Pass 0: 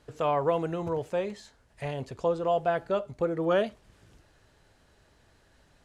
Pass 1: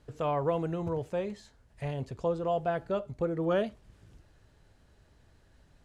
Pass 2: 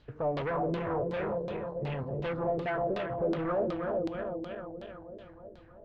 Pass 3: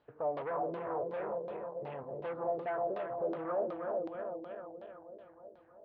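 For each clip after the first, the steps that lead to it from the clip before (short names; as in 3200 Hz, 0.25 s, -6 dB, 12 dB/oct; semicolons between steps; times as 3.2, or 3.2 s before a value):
low shelf 250 Hz +9 dB; gain -5 dB
regenerating reverse delay 0.157 s, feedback 79%, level -6.5 dB; hard clip -31 dBFS, distortion -8 dB; LFO low-pass saw down 2.7 Hz 330–4200 Hz
band-pass 750 Hz, Q 1; gain -2 dB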